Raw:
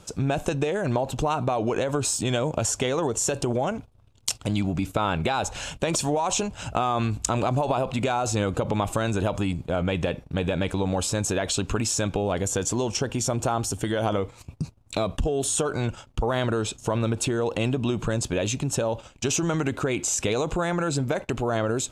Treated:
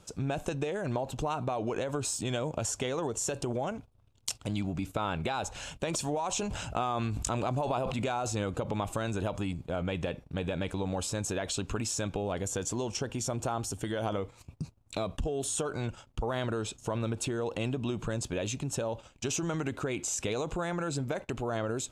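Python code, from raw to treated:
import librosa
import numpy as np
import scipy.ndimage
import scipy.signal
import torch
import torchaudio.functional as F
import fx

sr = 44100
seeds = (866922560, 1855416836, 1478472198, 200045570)

y = fx.sustainer(x, sr, db_per_s=33.0, at=(6.31, 8.33))
y = F.gain(torch.from_numpy(y), -7.5).numpy()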